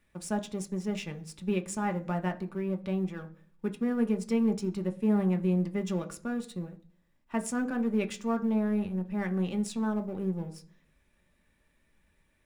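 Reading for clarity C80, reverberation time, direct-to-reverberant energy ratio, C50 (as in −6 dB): 21.5 dB, 0.50 s, 5.5 dB, 16.5 dB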